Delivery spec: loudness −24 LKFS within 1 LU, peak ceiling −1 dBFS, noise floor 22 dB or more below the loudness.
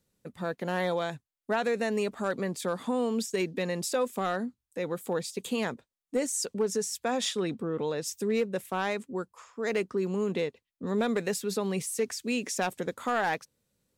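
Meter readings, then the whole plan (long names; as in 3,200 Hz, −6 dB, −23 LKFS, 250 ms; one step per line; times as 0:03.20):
share of clipped samples 0.3%; peaks flattened at −20.5 dBFS; integrated loudness −31.0 LKFS; sample peak −20.5 dBFS; target loudness −24.0 LKFS
→ clipped peaks rebuilt −20.5 dBFS
level +7 dB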